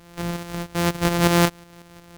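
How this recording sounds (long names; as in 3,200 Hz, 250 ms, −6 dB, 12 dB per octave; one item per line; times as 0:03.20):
a buzz of ramps at a fixed pitch in blocks of 256 samples
tremolo saw up 5.5 Hz, depth 55%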